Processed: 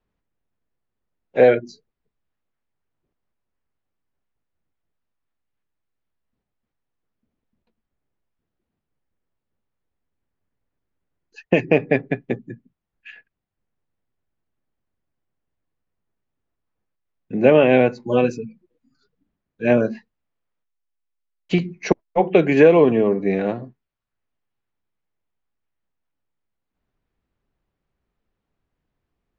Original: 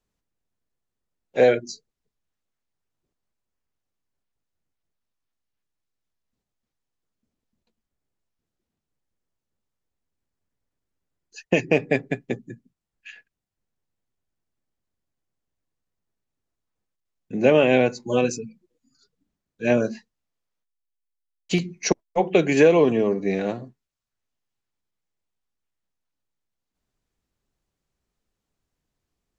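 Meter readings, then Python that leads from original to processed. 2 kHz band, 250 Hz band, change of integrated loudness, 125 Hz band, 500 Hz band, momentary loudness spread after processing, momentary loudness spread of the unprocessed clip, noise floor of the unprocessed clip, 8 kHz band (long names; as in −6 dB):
+2.0 dB, +3.5 dB, +3.5 dB, +3.5 dB, +3.5 dB, 14 LU, 17 LU, −84 dBFS, can't be measured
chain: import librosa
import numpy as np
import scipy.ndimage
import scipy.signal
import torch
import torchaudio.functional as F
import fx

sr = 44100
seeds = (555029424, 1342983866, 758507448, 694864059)

y = scipy.signal.sosfilt(scipy.signal.butter(2, 2600.0, 'lowpass', fs=sr, output='sos'), x)
y = y * 10.0 ** (3.5 / 20.0)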